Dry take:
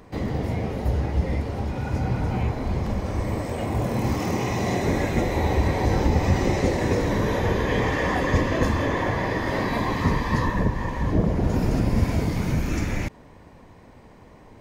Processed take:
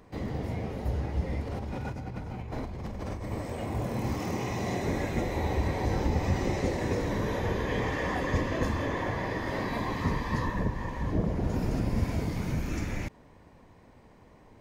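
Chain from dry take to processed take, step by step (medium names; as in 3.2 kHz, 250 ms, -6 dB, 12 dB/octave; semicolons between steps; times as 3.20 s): 1.47–3.32 s: compressor with a negative ratio -29 dBFS, ratio -1; trim -7 dB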